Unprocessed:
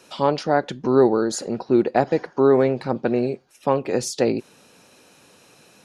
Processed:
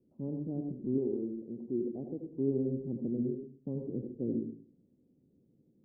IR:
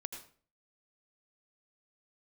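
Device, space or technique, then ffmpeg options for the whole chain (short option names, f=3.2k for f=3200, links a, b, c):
next room: -filter_complex "[0:a]lowpass=f=320:w=0.5412,lowpass=f=320:w=1.3066[a];[1:a]atrim=start_sample=2205[b];[a][b]afir=irnorm=-1:irlink=0,asettb=1/sr,asplit=3[c][d][e];[c]atrim=end=0.984[f];[d]atrim=start=0.98:end=2.33,asetpts=PTS-STARTPTS,afade=t=in:d=0.004:c=qsin,afade=t=out:st=1.346:d=0.004:c=qsin,lowshelf=f=230:g=-10[g];[e]atrim=start=2.326[h];[f][g]acrossfade=d=0.004:c1=hsin:c2=qsin[i];[i][h]acrossfade=d=0.004:c1=qsin:c2=hsin,volume=-6dB"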